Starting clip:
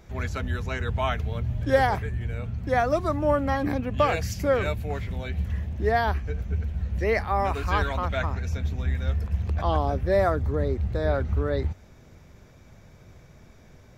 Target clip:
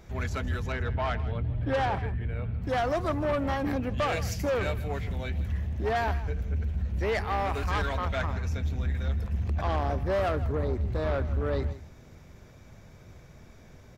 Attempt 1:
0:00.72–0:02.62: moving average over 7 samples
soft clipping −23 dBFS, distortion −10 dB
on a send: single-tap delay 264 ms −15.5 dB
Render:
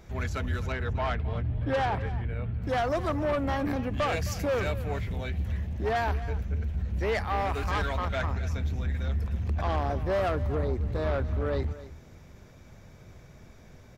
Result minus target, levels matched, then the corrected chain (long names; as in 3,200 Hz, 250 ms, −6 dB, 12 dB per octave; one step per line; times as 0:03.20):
echo 104 ms late
0:00.72–0:02.62: moving average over 7 samples
soft clipping −23 dBFS, distortion −10 dB
on a send: single-tap delay 160 ms −15.5 dB